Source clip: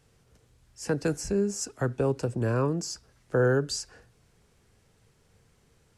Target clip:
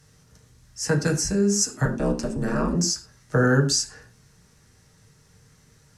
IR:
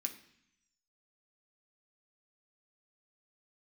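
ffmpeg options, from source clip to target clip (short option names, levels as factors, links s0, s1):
-filter_complex "[0:a]asettb=1/sr,asplit=3[s0][s1][s2];[s0]atrim=end=1.854[s3];[s1]atrim=start=1.85:end=2.75,asetpts=PTS-STARTPTS,afade=t=in:d=0.004:c=qsin,afade=t=out:st=0.896:d=0.004:c=qsin,aeval=exprs='val(0)*sin(2*PI*100*n/s)':c=same[s4];[s2]atrim=start=2.746[s5];[s3][s4]acrossfade=d=0.004:c1=hsin:c2=qsin[s6];[s6][s5]acrossfade=d=0.004:c1=qsin:c2=hsin[s7];[1:a]atrim=start_sample=2205,afade=t=out:st=0.14:d=0.01,atrim=end_sample=6615,asetrate=33957,aresample=44100[s8];[s7][s8]afir=irnorm=-1:irlink=0,volume=2.24"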